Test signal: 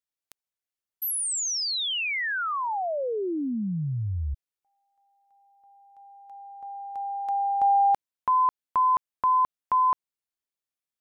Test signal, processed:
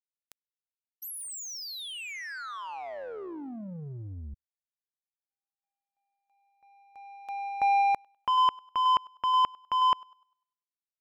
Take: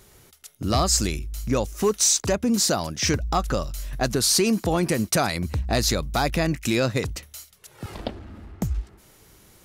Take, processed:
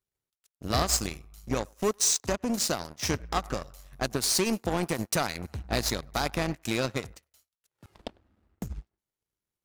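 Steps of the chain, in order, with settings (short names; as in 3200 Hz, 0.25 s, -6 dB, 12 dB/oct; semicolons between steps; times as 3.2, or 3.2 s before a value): narrowing echo 0.1 s, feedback 59%, band-pass 1000 Hz, level -15 dB; power-law curve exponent 2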